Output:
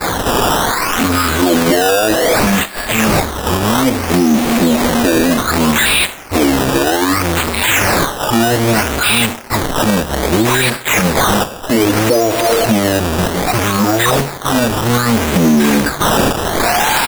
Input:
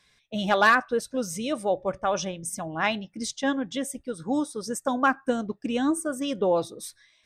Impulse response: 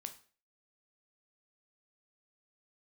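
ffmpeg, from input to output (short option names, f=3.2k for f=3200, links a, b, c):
-filter_complex "[0:a]aeval=exprs='val(0)+0.5*0.0562*sgn(val(0))':c=same,equalizer=f=250:w=1.9:g=-4,asplit=2[a][b];[b]asoftclip=type=tanh:threshold=-20dB,volume=-4dB[c];[a][c]amix=inputs=2:normalize=0,acrossover=split=3600[d][e];[d]adelay=110[f];[f][e]amix=inputs=2:normalize=0,asetrate=18742,aresample=44100,acompressor=threshold=-22dB:ratio=6,agate=range=-33dB:threshold=-24dB:ratio=3:detection=peak,acrossover=split=230[g][h];[g]acompressor=threshold=-50dB:ratio=2.5[i];[i][h]amix=inputs=2:normalize=0,acrusher=samples=14:mix=1:aa=0.000001:lfo=1:lforange=14:lforate=0.63,asplit=2[j][k];[1:a]atrim=start_sample=2205,asetrate=48510,aresample=44100,highshelf=f=5k:g=11.5[l];[k][l]afir=irnorm=-1:irlink=0,volume=-5.5dB[m];[j][m]amix=inputs=2:normalize=0,alimiter=level_in=21.5dB:limit=-1dB:release=50:level=0:latency=1,volume=-2.5dB"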